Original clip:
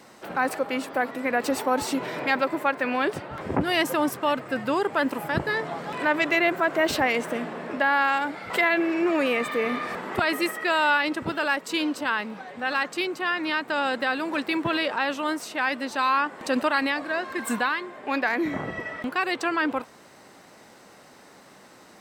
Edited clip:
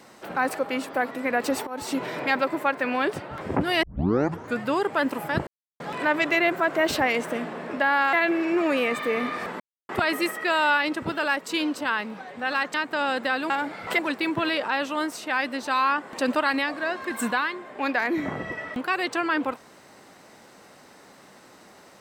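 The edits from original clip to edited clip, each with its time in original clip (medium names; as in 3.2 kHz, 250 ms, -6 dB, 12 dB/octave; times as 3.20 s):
1.67–1.97 s: fade in, from -20 dB
3.83 s: tape start 0.77 s
5.47–5.80 s: mute
8.13–8.62 s: move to 14.27 s
10.09 s: insert silence 0.29 s
12.94–13.51 s: delete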